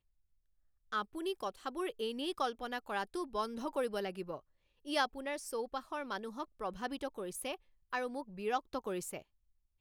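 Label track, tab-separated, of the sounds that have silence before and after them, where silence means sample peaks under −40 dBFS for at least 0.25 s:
0.920000	4.360000	sound
4.870000	7.550000	sound
7.930000	9.180000	sound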